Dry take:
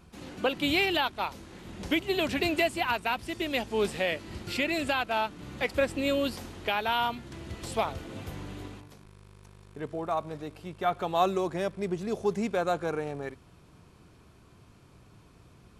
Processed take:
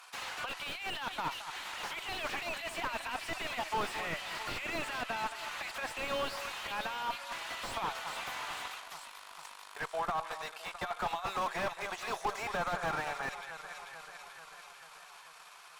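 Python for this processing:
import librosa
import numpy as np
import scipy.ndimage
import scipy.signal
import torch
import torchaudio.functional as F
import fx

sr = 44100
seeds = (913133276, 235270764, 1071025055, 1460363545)

y = fx.transient(x, sr, attack_db=4, sustain_db=-5)
y = scipy.signal.sosfilt(scipy.signal.butter(4, 870.0, 'highpass', fs=sr, output='sos'), y)
y = fx.over_compress(y, sr, threshold_db=-35.0, ratio=-0.5)
y = fx.tube_stage(y, sr, drive_db=24.0, bias=0.45)
y = fx.echo_alternate(y, sr, ms=220, hz=1800.0, feedback_pct=79, wet_db=-13.0)
y = fx.slew_limit(y, sr, full_power_hz=13.0)
y = y * librosa.db_to_amplitude(8.0)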